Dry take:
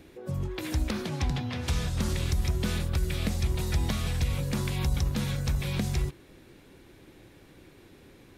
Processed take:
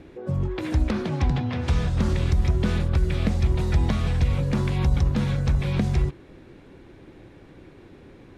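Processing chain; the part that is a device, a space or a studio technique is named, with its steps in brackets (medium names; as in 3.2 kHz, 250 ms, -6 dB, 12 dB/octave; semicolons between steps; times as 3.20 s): through cloth (low-pass 9.4 kHz 12 dB/octave; treble shelf 3.1 kHz -13.5 dB); trim +6.5 dB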